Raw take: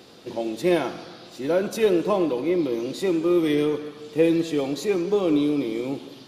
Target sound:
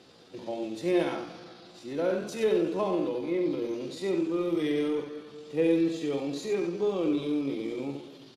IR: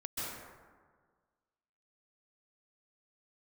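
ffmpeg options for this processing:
-af "aecho=1:1:36|64:0.355|0.501,atempo=0.75,lowpass=9.5k,volume=-7.5dB"

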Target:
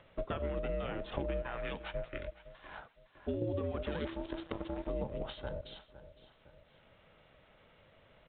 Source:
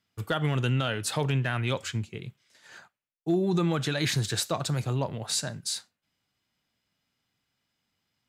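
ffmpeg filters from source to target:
-filter_complex "[0:a]afreqshift=-410,asettb=1/sr,asplit=3[a][b][c];[a]atrim=end=1.424[d];[b]atrim=start=1.42:end=3.42,asetpts=PTS-STARTPTS,afade=t=in:d=0.004:c=qsin,afade=t=out:st=1.996:d=0.004:c=qsin,lowshelf=f=450:g=-10[e];[c]atrim=start=3.416[f];[d][e]acrossfade=d=0.004:c1=hsin:c2=qsin[g];[g][f]acrossfade=d=0.004:c1=qsin:c2=hsin,acompressor=threshold=-38dB:ratio=10,asplit=2[h][i];[i]adelay=511,lowpass=f=2.7k:p=1,volume=-15.5dB,asplit=2[j][k];[k]adelay=511,lowpass=f=2.7k:p=1,volume=0.24[l];[h][j][l]amix=inputs=3:normalize=0,asettb=1/sr,asplit=3[m][n][o];[m]atrim=end=4.054[p];[n]atrim=start=4.05:end=4.89,asetpts=PTS-STARTPTS,afade=t=in:d=0.004:c=qsin,afade=t=out:st=0.836:d=0.004:c=qsin,acrusher=bits=6:dc=4:mix=0:aa=0.000001[q];[o]atrim=start=4.886[r];[p][q]acrossfade=d=0.004:c1=hsin:c2=qsin[s];[s][r]acrossfade=d=0.004:c1=qsin:c2=hsin,highshelf=f=2.2k:g=-11,acompressor=mode=upward:threshold=-55dB:ratio=2.5,aeval=exprs='val(0)*sin(2*PI*330*n/s)':c=same,volume=8dB" -ar 8000 -c:a pcm_alaw

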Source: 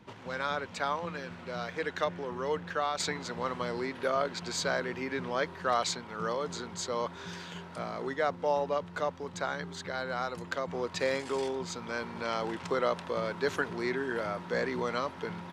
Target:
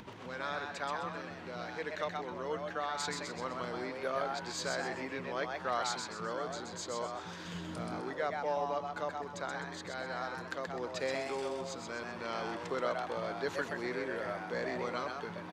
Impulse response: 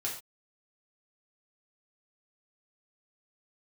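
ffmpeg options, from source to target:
-filter_complex "[0:a]acompressor=mode=upward:threshold=-36dB:ratio=2.5,asettb=1/sr,asplit=3[a][b][c];[a]atrim=end=7.454[d];[b]atrim=start=7.45:end=8.01,asetpts=PTS-STARTPTS,afade=t=in:d=0.004:c=qsin,afade=t=out:st=0.556:d=0.004:c=qsin,bass=f=250:g=9,treble=f=4k:g=4[e];[c]atrim=start=8.006[f];[d][e]acrossfade=d=0.004:c1=hsin:c2=qsin[g];[g][f]acrossfade=d=0.004:c1=qsin:c2=hsin,asplit=6[h][i][j][k][l][m];[i]adelay=128,afreqshift=140,volume=-4dB[n];[j]adelay=256,afreqshift=280,volume=-12.9dB[o];[k]adelay=384,afreqshift=420,volume=-21.7dB[p];[l]adelay=512,afreqshift=560,volume=-30.6dB[q];[m]adelay=640,afreqshift=700,volume=-39.5dB[r];[h][n][o][p][q][r]amix=inputs=6:normalize=0,volume=-6dB"

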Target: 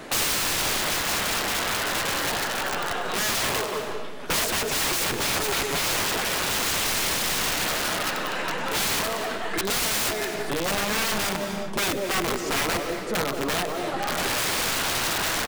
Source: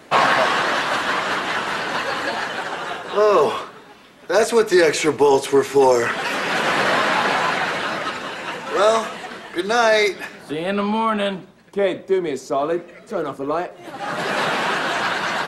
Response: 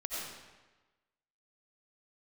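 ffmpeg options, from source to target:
-filter_complex "[0:a]aeval=exprs='if(lt(val(0),0),0.708*val(0),val(0))':c=same,asplit=2[a][b];[b]adelay=182,lowpass=f=1.3k:p=1,volume=-11dB,asplit=2[c][d];[d]adelay=182,lowpass=f=1.3k:p=1,volume=0.4,asplit=2[e][f];[f]adelay=182,lowpass=f=1.3k:p=1,volume=0.4,asplit=2[g][h];[h]adelay=182,lowpass=f=1.3k:p=1,volume=0.4[i];[a][c][e][g][i]amix=inputs=5:normalize=0,aeval=exprs='(mod(8.91*val(0)+1,2)-1)/8.91':c=same,asplit=2[j][k];[1:a]atrim=start_sample=2205,afade=t=out:st=0.36:d=0.01,atrim=end_sample=16317,adelay=98[l];[k][l]afir=irnorm=-1:irlink=0,volume=-13.5dB[m];[j][m]amix=inputs=2:normalize=0,alimiter=level_in=1dB:limit=-24dB:level=0:latency=1:release=153,volume=-1dB,volume=6.5dB"

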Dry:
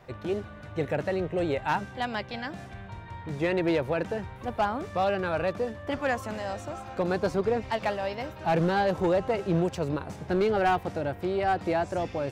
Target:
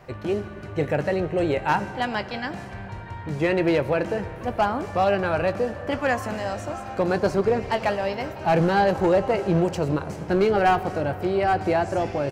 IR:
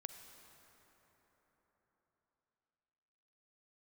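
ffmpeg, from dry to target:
-filter_complex "[0:a]bandreject=f=3.6k:w=10,asplit=2[a][b];[b]adelay=20,volume=-14dB[c];[a][c]amix=inputs=2:normalize=0,asplit=2[d][e];[1:a]atrim=start_sample=2205[f];[e][f]afir=irnorm=-1:irlink=0,volume=2dB[g];[d][g]amix=inputs=2:normalize=0"

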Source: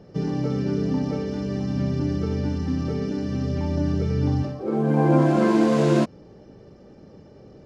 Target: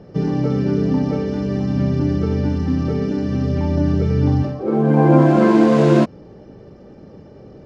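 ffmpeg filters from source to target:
-af "highshelf=f=4.9k:g=-9.5,volume=6dB"

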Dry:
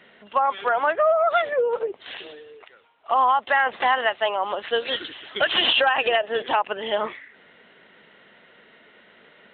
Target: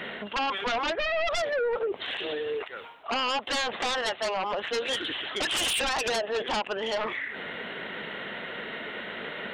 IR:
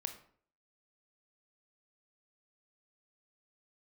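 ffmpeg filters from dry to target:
-af "aeval=exprs='0.398*sin(PI/2*3.98*val(0)/0.398)':c=same,areverse,acompressor=threshold=-22dB:ratio=10,areverse,alimiter=limit=-24dB:level=0:latency=1:release=114"

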